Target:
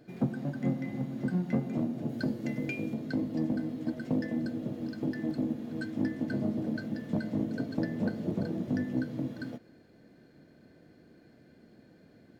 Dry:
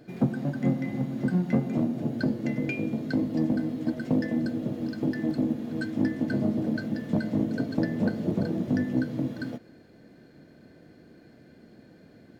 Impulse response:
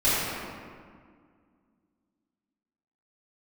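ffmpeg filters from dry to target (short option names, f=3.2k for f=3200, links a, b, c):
-filter_complex "[0:a]asettb=1/sr,asplit=3[a][b][c];[a]atrim=end=2.094[d];[b]atrim=start=2.09:end=2.94,asetpts=PTS-STARTPTS,afade=t=in:d=0.004:c=qsin,afade=t=out:st=0.846:d=0.004:c=qsin,highshelf=f=4.6k:g=6[e];[c]atrim=start=2.936[f];[d][e]acrossfade=d=0.004:c1=hsin:c2=qsin[g];[g][f]acrossfade=d=0.004:c1=qsin:c2=hsin,volume=-5dB"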